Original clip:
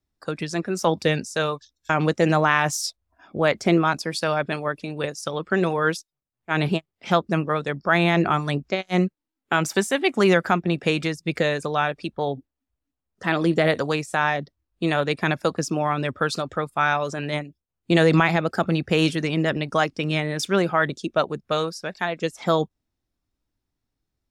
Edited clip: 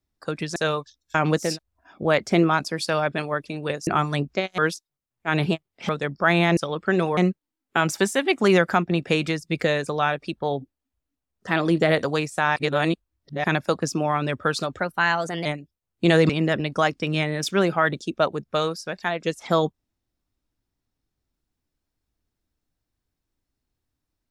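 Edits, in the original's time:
0.56–1.31 s: delete
2.22–2.81 s: delete, crossfade 0.24 s
5.21–5.81 s: swap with 8.22–8.93 s
7.12–7.54 s: delete
14.32–15.20 s: reverse
16.55–17.32 s: speed 116%
18.16–19.26 s: delete

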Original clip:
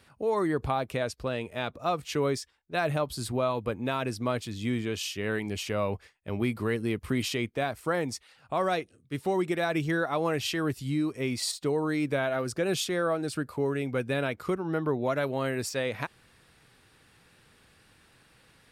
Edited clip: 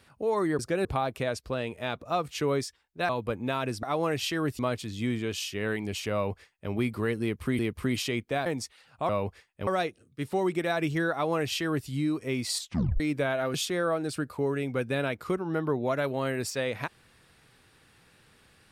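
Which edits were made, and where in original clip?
2.83–3.48 s: delete
5.76–6.34 s: copy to 8.60 s
6.85–7.22 s: loop, 2 plays
7.72–7.97 s: delete
10.05–10.81 s: copy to 4.22 s
11.52 s: tape stop 0.41 s
12.47–12.73 s: move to 0.59 s

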